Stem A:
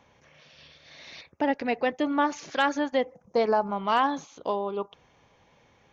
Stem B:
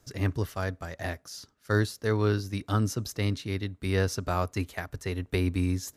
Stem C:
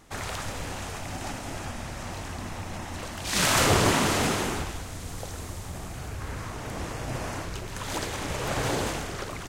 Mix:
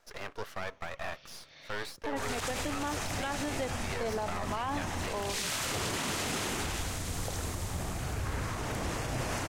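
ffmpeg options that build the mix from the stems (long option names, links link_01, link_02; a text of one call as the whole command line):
ffmpeg -i stem1.wav -i stem2.wav -i stem3.wav -filter_complex "[0:a]adelay=650,volume=-4dB[link_01];[1:a]highpass=frequency=460:width=0.5412,highpass=frequency=460:width=1.3066,asplit=2[link_02][link_03];[link_03]highpass=frequency=720:poles=1,volume=17dB,asoftclip=type=tanh:threshold=-14.5dB[link_04];[link_02][link_04]amix=inputs=2:normalize=0,lowpass=frequency=1400:poles=1,volume=-6dB,aeval=exprs='max(val(0),0)':channel_layout=same,volume=-1dB[link_05];[2:a]adynamicequalizer=threshold=0.0112:dfrequency=1700:dqfactor=0.7:tfrequency=1700:tqfactor=0.7:attack=5:release=100:ratio=0.375:range=2.5:mode=boostabove:tftype=highshelf,adelay=2050,volume=1.5dB[link_06];[link_01][link_05][link_06]amix=inputs=3:normalize=0,alimiter=level_in=0.5dB:limit=-24dB:level=0:latency=1:release=58,volume=-0.5dB" out.wav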